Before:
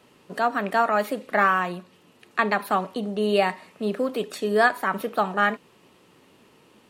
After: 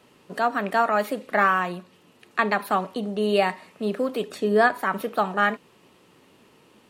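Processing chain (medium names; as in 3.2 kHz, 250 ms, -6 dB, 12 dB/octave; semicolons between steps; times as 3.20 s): 4.29–4.79 s: tilt EQ -1.5 dB/octave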